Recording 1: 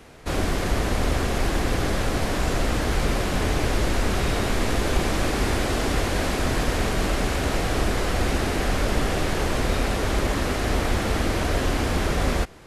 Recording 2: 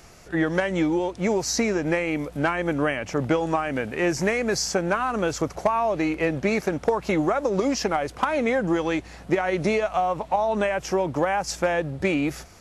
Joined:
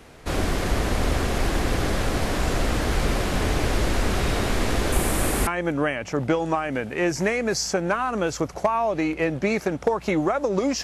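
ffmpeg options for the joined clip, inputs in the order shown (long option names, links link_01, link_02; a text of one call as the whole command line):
ffmpeg -i cue0.wav -i cue1.wav -filter_complex "[0:a]asettb=1/sr,asplit=3[link_01][link_02][link_03];[link_01]atrim=end=4.924[link_04];[link_02]atrim=start=4.92:end=5.47,asetpts=PTS-STARTPTS,afade=type=in:duration=0.004:curve=qsin,afade=type=out:start_time=0.546:duration=0.004:curve=qsin,highshelf=frequency=7200:width_type=q:width=1.5:gain=9.5[link_05];[link_03]atrim=start=5.466[link_06];[link_04][link_05]acrossfade=duration=0.004:curve1=hsin:curve2=qsin[link_07];[link_07][link_06]acrossfade=duration=0.004:curve1=qsin:curve2=hsin,apad=whole_dur=10.83,atrim=end=10.83,atrim=end=5.472[link_08];[1:a]atrim=start=2.478:end=7.84[link_09];[link_08][link_09]acrossfade=duration=0.004:curve1=hsin:curve2=hsin" out.wav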